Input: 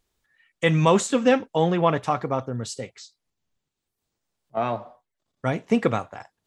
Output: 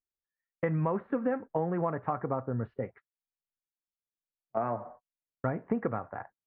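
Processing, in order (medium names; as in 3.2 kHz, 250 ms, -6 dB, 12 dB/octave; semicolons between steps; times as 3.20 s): steep low-pass 1.8 kHz 36 dB/octave; gate -49 dBFS, range -28 dB; compression 6:1, threshold -27 dBFS, peak gain reduction 13.5 dB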